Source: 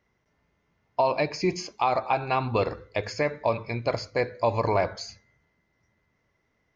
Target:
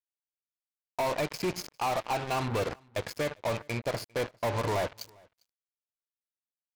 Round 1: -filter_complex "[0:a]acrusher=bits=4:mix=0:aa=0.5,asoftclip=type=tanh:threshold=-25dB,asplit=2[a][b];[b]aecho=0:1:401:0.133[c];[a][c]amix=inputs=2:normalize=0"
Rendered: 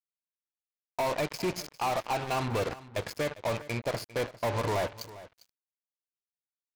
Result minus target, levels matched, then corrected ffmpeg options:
echo-to-direct +10.5 dB
-filter_complex "[0:a]acrusher=bits=4:mix=0:aa=0.5,asoftclip=type=tanh:threshold=-25dB,asplit=2[a][b];[b]aecho=0:1:401:0.0398[c];[a][c]amix=inputs=2:normalize=0"

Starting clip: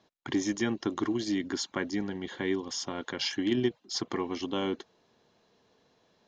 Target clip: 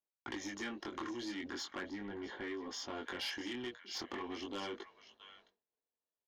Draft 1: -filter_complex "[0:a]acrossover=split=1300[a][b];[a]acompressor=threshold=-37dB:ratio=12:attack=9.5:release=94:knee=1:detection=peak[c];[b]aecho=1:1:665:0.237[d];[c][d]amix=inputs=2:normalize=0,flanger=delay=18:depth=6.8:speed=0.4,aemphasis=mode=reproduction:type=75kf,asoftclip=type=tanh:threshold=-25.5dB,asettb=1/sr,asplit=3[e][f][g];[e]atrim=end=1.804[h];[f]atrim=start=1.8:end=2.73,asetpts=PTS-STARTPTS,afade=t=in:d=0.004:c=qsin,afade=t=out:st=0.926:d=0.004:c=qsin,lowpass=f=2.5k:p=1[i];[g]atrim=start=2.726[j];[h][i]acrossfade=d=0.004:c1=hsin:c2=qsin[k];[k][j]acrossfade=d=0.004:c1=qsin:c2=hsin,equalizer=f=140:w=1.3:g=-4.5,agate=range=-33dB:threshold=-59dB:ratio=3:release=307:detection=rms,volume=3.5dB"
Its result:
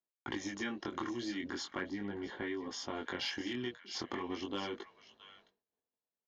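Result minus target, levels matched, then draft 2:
soft clip: distortion -15 dB; 125 Hz band +4.0 dB
-filter_complex "[0:a]acrossover=split=1300[a][b];[a]acompressor=threshold=-37dB:ratio=12:attack=9.5:release=94:knee=1:detection=peak[c];[b]aecho=1:1:665:0.237[d];[c][d]amix=inputs=2:normalize=0,flanger=delay=18:depth=6.8:speed=0.4,aemphasis=mode=reproduction:type=75kf,asoftclip=type=tanh:threshold=-36.5dB,asettb=1/sr,asplit=3[e][f][g];[e]atrim=end=1.804[h];[f]atrim=start=1.8:end=2.73,asetpts=PTS-STARTPTS,afade=t=in:d=0.004:c=qsin,afade=t=out:st=0.926:d=0.004:c=qsin,lowpass=f=2.5k:p=1[i];[g]atrim=start=2.726[j];[h][i]acrossfade=d=0.004:c1=hsin:c2=qsin[k];[k][j]acrossfade=d=0.004:c1=qsin:c2=hsin,equalizer=f=140:w=1.3:g=-12,agate=range=-33dB:threshold=-59dB:ratio=3:release=307:detection=rms,volume=3.5dB"

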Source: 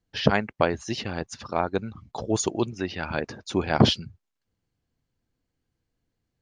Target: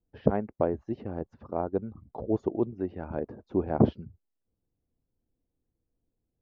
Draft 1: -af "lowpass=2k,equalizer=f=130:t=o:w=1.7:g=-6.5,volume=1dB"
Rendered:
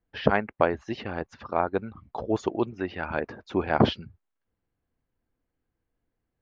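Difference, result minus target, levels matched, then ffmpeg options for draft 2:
2000 Hz band +15.0 dB
-af "lowpass=540,equalizer=f=130:t=o:w=1.7:g=-6.5,volume=1dB"

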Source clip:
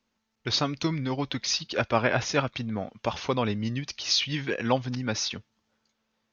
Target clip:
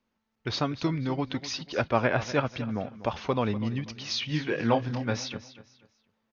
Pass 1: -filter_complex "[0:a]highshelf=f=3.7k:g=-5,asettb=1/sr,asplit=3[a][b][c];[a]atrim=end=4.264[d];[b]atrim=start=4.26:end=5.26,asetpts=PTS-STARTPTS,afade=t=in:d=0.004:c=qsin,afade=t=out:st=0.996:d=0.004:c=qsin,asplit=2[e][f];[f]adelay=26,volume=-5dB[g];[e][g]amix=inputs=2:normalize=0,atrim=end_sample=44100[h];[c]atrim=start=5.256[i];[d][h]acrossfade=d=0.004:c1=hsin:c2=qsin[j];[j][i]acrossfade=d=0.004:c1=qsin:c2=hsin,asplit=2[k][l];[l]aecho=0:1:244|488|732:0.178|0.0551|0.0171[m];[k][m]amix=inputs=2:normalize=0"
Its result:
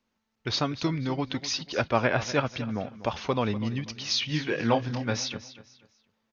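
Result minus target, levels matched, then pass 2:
8000 Hz band +4.0 dB
-filter_complex "[0:a]highshelf=f=3.7k:g=-12,asettb=1/sr,asplit=3[a][b][c];[a]atrim=end=4.264[d];[b]atrim=start=4.26:end=5.26,asetpts=PTS-STARTPTS,afade=t=in:d=0.004:c=qsin,afade=t=out:st=0.996:d=0.004:c=qsin,asplit=2[e][f];[f]adelay=26,volume=-5dB[g];[e][g]amix=inputs=2:normalize=0,atrim=end_sample=44100[h];[c]atrim=start=5.256[i];[d][h]acrossfade=d=0.004:c1=hsin:c2=qsin[j];[j][i]acrossfade=d=0.004:c1=qsin:c2=hsin,asplit=2[k][l];[l]aecho=0:1:244|488|732:0.178|0.0551|0.0171[m];[k][m]amix=inputs=2:normalize=0"

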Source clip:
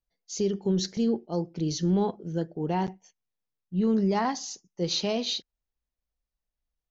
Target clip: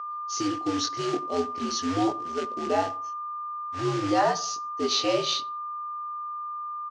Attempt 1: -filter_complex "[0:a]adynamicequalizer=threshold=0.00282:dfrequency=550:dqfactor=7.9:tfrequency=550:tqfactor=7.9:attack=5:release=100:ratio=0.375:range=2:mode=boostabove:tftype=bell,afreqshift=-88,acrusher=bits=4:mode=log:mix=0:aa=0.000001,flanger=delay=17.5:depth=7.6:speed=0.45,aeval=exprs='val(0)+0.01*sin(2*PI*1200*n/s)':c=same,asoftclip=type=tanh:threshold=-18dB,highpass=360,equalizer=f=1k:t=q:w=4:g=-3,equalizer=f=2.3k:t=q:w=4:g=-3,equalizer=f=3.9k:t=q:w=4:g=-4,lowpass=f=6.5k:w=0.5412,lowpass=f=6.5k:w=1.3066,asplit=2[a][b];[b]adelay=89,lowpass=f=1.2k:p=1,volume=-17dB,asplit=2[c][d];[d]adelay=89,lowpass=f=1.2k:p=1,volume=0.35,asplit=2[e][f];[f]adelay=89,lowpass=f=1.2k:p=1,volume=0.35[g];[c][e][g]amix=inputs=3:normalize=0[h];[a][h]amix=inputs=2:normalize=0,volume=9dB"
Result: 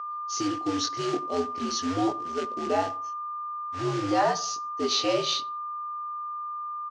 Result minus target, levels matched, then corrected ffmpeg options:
soft clip: distortion +16 dB
-filter_complex "[0:a]adynamicequalizer=threshold=0.00282:dfrequency=550:dqfactor=7.9:tfrequency=550:tqfactor=7.9:attack=5:release=100:ratio=0.375:range=2:mode=boostabove:tftype=bell,afreqshift=-88,acrusher=bits=4:mode=log:mix=0:aa=0.000001,flanger=delay=17.5:depth=7.6:speed=0.45,aeval=exprs='val(0)+0.01*sin(2*PI*1200*n/s)':c=same,asoftclip=type=tanh:threshold=-9dB,highpass=360,equalizer=f=1k:t=q:w=4:g=-3,equalizer=f=2.3k:t=q:w=4:g=-3,equalizer=f=3.9k:t=q:w=4:g=-4,lowpass=f=6.5k:w=0.5412,lowpass=f=6.5k:w=1.3066,asplit=2[a][b];[b]adelay=89,lowpass=f=1.2k:p=1,volume=-17dB,asplit=2[c][d];[d]adelay=89,lowpass=f=1.2k:p=1,volume=0.35,asplit=2[e][f];[f]adelay=89,lowpass=f=1.2k:p=1,volume=0.35[g];[c][e][g]amix=inputs=3:normalize=0[h];[a][h]amix=inputs=2:normalize=0,volume=9dB"

